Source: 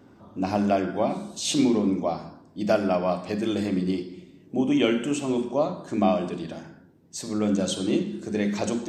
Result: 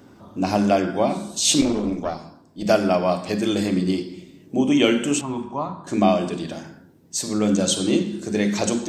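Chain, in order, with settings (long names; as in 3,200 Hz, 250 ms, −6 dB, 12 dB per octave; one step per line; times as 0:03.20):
high-shelf EQ 4,100 Hz +8 dB
0:01.61–0:02.66: tube saturation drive 17 dB, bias 0.8
0:05.21–0:05.87: drawn EQ curve 120 Hz 0 dB, 590 Hz −13 dB, 910 Hz +3 dB, 5,000 Hz −17 dB
level +4 dB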